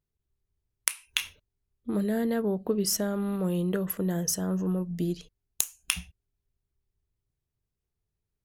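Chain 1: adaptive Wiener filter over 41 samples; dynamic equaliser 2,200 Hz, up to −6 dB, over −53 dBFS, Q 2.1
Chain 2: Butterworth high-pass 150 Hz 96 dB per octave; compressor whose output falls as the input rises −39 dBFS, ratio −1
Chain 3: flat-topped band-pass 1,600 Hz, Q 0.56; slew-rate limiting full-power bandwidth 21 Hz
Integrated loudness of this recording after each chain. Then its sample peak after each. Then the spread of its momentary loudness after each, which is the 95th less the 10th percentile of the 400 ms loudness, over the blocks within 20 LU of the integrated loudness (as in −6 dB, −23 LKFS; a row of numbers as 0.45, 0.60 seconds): −30.5, −38.5, −44.0 LKFS; −5.5, −16.0, −26.0 dBFS; 6, 8, 14 LU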